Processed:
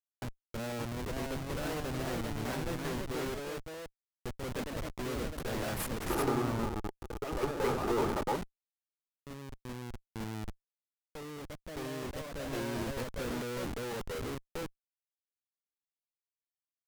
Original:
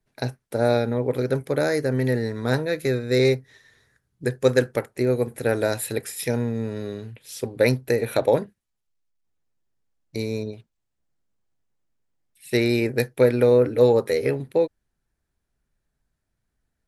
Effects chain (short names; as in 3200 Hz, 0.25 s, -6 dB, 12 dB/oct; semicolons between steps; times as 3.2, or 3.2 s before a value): dynamic EQ 130 Hz, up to -7 dB, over -40 dBFS, Q 3.3; spectral noise reduction 10 dB; ten-band EQ 500 Hz -8 dB, 1000 Hz +9 dB, 4000 Hz -10 dB; Schmitt trigger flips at -30.5 dBFS; echoes that change speed 0.603 s, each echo +2 st, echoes 2; 6.1–8.36 small resonant body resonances 390/850/1200 Hz, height 12 dB, ringing for 20 ms; gain -8.5 dB